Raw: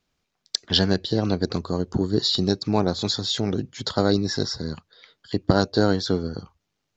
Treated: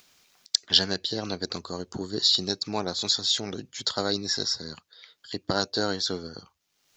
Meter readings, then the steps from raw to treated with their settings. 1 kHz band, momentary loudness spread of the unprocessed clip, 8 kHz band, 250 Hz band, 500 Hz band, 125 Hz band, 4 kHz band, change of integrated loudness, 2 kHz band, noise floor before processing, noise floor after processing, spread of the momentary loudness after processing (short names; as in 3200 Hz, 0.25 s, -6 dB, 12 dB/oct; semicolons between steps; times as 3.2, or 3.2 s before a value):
-5.0 dB, 9 LU, n/a, -10.5 dB, -8.0 dB, -13.5 dB, +1.5 dB, -2.5 dB, -2.5 dB, -78 dBFS, -74 dBFS, 14 LU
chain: tilt +3 dB/oct; upward compressor, threshold -42 dBFS; gain -4.5 dB